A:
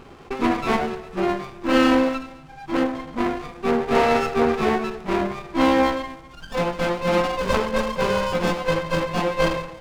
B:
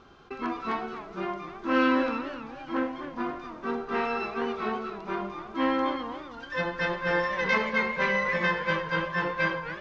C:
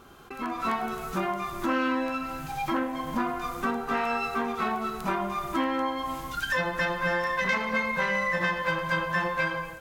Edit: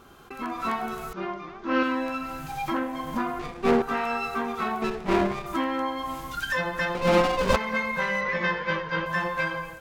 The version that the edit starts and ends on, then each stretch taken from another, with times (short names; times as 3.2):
C
1.13–1.83 from B
3.39–3.82 from A
4.82–5.46 from A
6.95–7.56 from A
8.21–9.06 from B